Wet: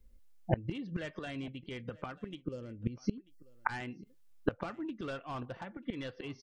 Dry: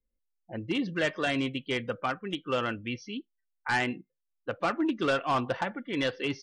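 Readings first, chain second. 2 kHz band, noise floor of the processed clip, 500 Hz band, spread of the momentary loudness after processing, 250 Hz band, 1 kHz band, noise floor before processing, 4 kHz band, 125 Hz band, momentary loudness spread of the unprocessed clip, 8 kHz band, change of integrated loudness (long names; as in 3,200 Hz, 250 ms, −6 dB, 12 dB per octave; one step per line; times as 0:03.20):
−12.0 dB, −62 dBFS, −9.5 dB, 8 LU, −7.0 dB, −11.0 dB, −81 dBFS, −15.0 dB, −0.5 dB, 12 LU, −13.0 dB, −9.0 dB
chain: gate with flip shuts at −29 dBFS, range −27 dB
low-shelf EQ 190 Hz +12 dB
gain on a spectral selection 0:02.42–0:03.47, 620–4,100 Hz −15 dB
single-tap delay 939 ms −22.5 dB
level +12 dB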